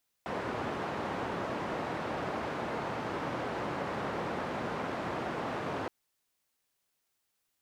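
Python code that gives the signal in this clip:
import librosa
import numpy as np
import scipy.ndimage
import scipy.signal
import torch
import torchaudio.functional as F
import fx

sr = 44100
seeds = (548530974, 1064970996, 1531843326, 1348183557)

y = fx.band_noise(sr, seeds[0], length_s=5.62, low_hz=110.0, high_hz=960.0, level_db=-35.5)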